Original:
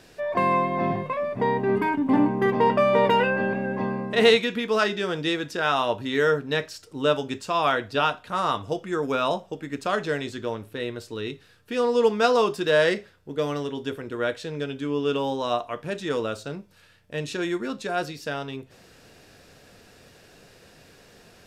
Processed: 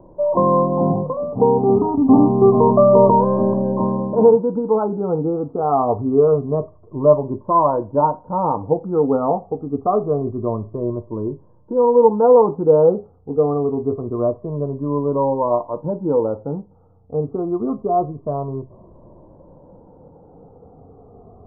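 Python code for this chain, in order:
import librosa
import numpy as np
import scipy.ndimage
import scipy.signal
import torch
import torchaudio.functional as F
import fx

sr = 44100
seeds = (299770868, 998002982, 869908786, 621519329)

y = fx.spec_ripple(x, sr, per_octave=1.3, drift_hz=-0.26, depth_db=12)
y = scipy.signal.sosfilt(scipy.signal.butter(12, 1100.0, 'lowpass', fs=sr, output='sos'), y)
y = fx.low_shelf(y, sr, hz=110.0, db=5.5)
y = y * 10.0 ** (6.5 / 20.0)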